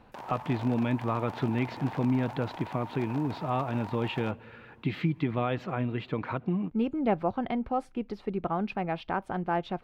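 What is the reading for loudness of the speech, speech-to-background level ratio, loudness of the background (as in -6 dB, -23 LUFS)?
-31.0 LUFS, 12.0 dB, -43.0 LUFS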